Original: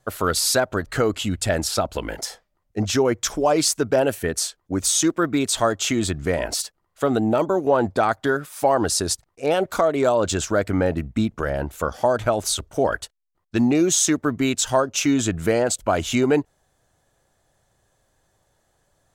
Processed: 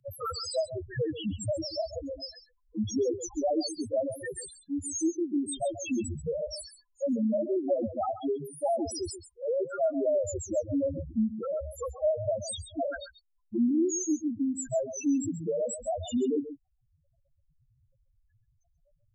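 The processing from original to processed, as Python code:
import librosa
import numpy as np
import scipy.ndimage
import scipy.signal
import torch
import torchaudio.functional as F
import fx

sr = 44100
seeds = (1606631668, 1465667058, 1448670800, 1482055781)

p1 = fx.high_shelf(x, sr, hz=3000.0, db=8.0)
p2 = fx.notch(p1, sr, hz=430.0, q=12.0)
p3 = fx.rider(p2, sr, range_db=10, speed_s=2.0)
p4 = p2 + (p3 * 10.0 ** (-1.0 / 20.0))
p5 = fx.spec_topn(p4, sr, count=1)
p6 = p5 + fx.echo_single(p5, sr, ms=134, db=-13.5, dry=0)
p7 = fx.band_squash(p6, sr, depth_pct=40)
y = p7 * 10.0 ** (-7.0 / 20.0)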